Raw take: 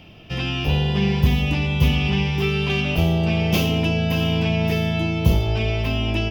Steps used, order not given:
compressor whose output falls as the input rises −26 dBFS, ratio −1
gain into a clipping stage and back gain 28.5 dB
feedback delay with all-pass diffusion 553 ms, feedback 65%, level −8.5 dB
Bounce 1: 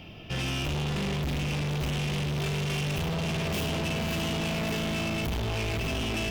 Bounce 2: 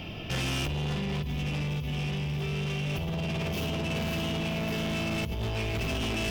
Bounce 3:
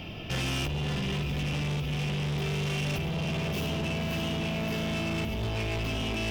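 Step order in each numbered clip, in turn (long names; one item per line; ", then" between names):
feedback delay with all-pass diffusion, then gain into a clipping stage and back, then compressor whose output falls as the input rises
feedback delay with all-pass diffusion, then compressor whose output falls as the input rises, then gain into a clipping stage and back
compressor whose output falls as the input rises, then feedback delay with all-pass diffusion, then gain into a clipping stage and back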